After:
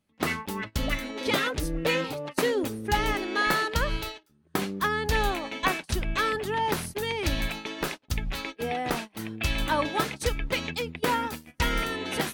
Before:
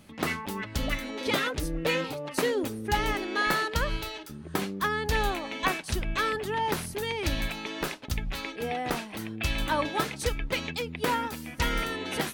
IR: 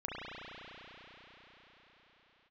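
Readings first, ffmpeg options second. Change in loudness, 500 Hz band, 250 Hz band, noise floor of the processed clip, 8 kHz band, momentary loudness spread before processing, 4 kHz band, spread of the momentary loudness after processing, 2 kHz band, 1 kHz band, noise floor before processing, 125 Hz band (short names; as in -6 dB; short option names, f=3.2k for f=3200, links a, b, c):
+1.5 dB, +1.5 dB, +1.5 dB, -64 dBFS, +1.0 dB, 6 LU, +1.5 dB, 7 LU, +1.5 dB, +1.5 dB, -43 dBFS, +1.5 dB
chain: -af "agate=range=-24dB:threshold=-36dB:ratio=16:detection=peak,volume=1.5dB"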